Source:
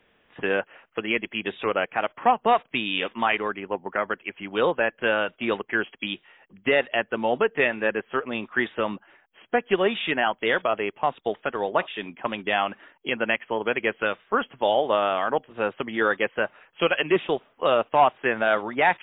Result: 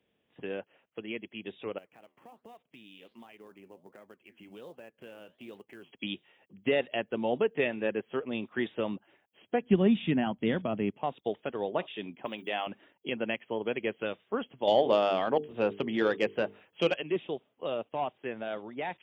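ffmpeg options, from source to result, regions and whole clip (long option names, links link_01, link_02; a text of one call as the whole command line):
ffmpeg -i in.wav -filter_complex "[0:a]asettb=1/sr,asplit=3[link_01][link_02][link_03];[link_01]atrim=end=1.784[link_04];[link_02]atrim=start=1.78:end=5.91,asetpts=PTS-STARTPTS,afade=type=in:duration=0.004:curve=qsin,afade=type=out:start_time=4.126:duration=0.004:curve=qsin,acompressor=threshold=-38dB:ratio=2.5:attack=3.2:release=140:knee=1:detection=peak,flanger=delay=2.9:depth=9.8:regen=-80:speed=1.3:shape=sinusoidal,acrusher=bits=7:mode=log:mix=0:aa=0.000001[link_05];[link_03]atrim=start=5.906[link_06];[link_04][link_05]acrossfade=duration=0.004:curve1=hsin:curve2=qsin[link_07];[link_07][link_06]acrossfade=duration=0.004:curve1=qsin:curve2=hsin,asettb=1/sr,asplit=3[link_08][link_09][link_10];[link_08]atrim=end=9.624[link_11];[link_09]atrim=start=9.62:end=10.97,asetpts=PTS-STARTPTS,afade=type=in:duration=0.004:curve=qsin,afade=type=out:start_time=1.346:duration=0.004:curve=qsin,lowpass=frequency=2300:poles=1,lowshelf=frequency=310:width_type=q:width=1.5:gain=9.5[link_12];[link_10]atrim=start=10.966[link_13];[link_11][link_12]acrossfade=duration=0.004:curve1=hsin:curve2=qsin[link_14];[link_14][link_13]acrossfade=duration=0.004:curve1=qsin:curve2=hsin,asettb=1/sr,asplit=3[link_15][link_16][link_17];[link_15]atrim=end=12.254[link_18];[link_16]atrim=start=12.25:end=12.67,asetpts=PTS-STARTPTS,afade=type=in:duration=0.004:curve=qsin,afade=type=out:start_time=0.416:duration=0.004:curve=qsin,aemphasis=mode=production:type=bsi,bandreject=frequency=50:width_type=h:width=6,bandreject=frequency=100:width_type=h:width=6,bandreject=frequency=150:width_type=h:width=6,bandreject=frequency=200:width_type=h:width=6,bandreject=frequency=250:width_type=h:width=6,bandreject=frequency=300:width_type=h:width=6,bandreject=frequency=350:width_type=h:width=6,bandreject=frequency=400:width_type=h:width=6,acrossover=split=2800[link_19][link_20];[link_20]acompressor=threshold=-34dB:ratio=4:attack=1:release=60[link_21];[link_19][link_21]amix=inputs=2:normalize=0[link_22];[link_17]atrim=start=12.666[link_23];[link_18][link_22]acrossfade=duration=0.004:curve1=hsin:curve2=qsin[link_24];[link_24][link_23]acrossfade=duration=0.004:curve1=qsin:curve2=hsin,asettb=1/sr,asplit=3[link_25][link_26][link_27];[link_25]atrim=end=14.674[link_28];[link_26]atrim=start=14.67:end=16.94,asetpts=PTS-STARTPTS,afade=type=in:duration=0.004:curve=qsin,afade=type=out:start_time=2.266:duration=0.004:curve=qsin,acontrast=83,bandreject=frequency=50:width_type=h:width=6,bandreject=frequency=100:width_type=h:width=6,bandreject=frequency=150:width_type=h:width=6,bandreject=frequency=200:width_type=h:width=6,bandreject=frequency=250:width_type=h:width=6,bandreject=frequency=300:width_type=h:width=6,bandreject=frequency=350:width_type=h:width=6,bandreject=frequency=400:width_type=h:width=6,bandreject=frequency=450:width_type=h:width=6[link_29];[link_27]atrim=start=16.936[link_30];[link_28][link_29]acrossfade=duration=0.004:curve1=hsin:curve2=qsin[link_31];[link_31][link_30]acrossfade=duration=0.004:curve1=qsin:curve2=hsin,highpass=81,equalizer=frequency=1400:width_type=o:width=1.9:gain=-13,dynaudnorm=framelen=750:gausssize=11:maxgain=7.5dB,volume=-8dB" out.wav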